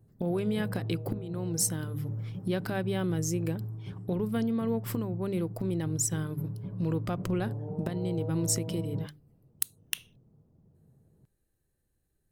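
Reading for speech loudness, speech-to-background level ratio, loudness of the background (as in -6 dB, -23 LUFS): -32.5 LUFS, 6.0 dB, -38.5 LUFS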